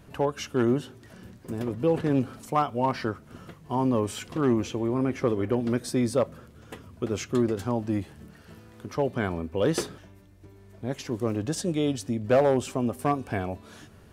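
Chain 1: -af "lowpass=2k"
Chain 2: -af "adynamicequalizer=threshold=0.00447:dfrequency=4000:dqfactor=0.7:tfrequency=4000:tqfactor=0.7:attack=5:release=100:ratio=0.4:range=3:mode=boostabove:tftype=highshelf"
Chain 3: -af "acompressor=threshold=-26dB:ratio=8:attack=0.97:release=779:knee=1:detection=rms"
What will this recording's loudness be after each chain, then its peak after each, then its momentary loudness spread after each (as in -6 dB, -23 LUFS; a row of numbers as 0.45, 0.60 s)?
-28.0, -27.5, -36.5 LUFS; -12.0, -11.5, -21.5 dBFS; 13, 12, 15 LU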